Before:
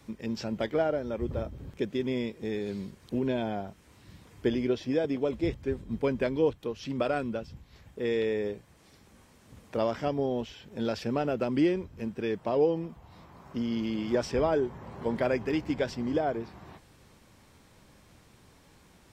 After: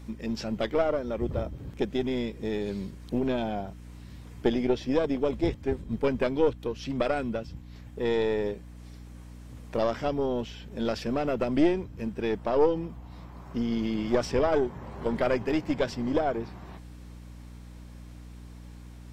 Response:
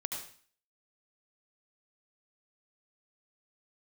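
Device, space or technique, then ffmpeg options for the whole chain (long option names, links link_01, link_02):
valve amplifier with mains hum: -af "aeval=exprs='(tanh(7.94*val(0)+0.75)-tanh(0.75))/7.94':channel_layout=same,aeval=exprs='val(0)+0.00316*(sin(2*PI*60*n/s)+sin(2*PI*2*60*n/s)/2+sin(2*PI*3*60*n/s)/3+sin(2*PI*4*60*n/s)/4+sin(2*PI*5*60*n/s)/5)':channel_layout=same,volume=6.5dB"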